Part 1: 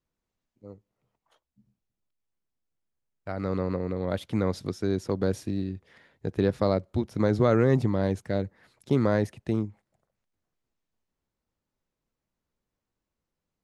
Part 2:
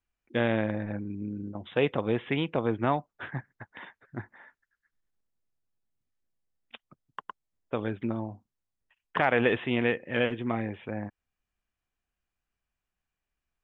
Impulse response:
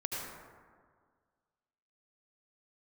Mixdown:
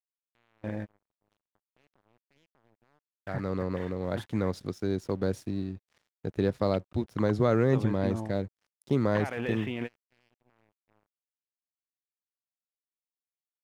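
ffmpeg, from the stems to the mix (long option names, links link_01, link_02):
-filter_complex "[0:a]volume=-2.5dB,asplit=2[link_01][link_02];[1:a]lowshelf=frequency=72:gain=7.5,alimiter=limit=-21dB:level=0:latency=1:release=31,volume=-2dB[link_03];[link_02]apad=whole_len=601444[link_04];[link_03][link_04]sidechaingate=range=-25dB:threshold=-57dB:ratio=16:detection=peak[link_05];[link_01][link_05]amix=inputs=2:normalize=0,aeval=exprs='sgn(val(0))*max(abs(val(0))-0.00178,0)':channel_layout=same"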